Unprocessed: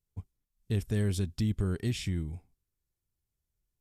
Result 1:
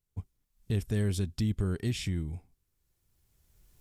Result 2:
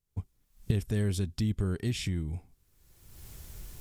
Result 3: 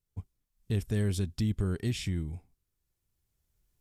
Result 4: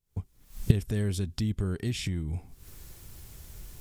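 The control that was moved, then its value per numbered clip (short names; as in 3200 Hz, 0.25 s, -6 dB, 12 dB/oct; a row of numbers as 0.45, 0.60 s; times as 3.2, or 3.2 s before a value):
recorder AGC, rising by: 14, 36, 5.8, 90 dB/s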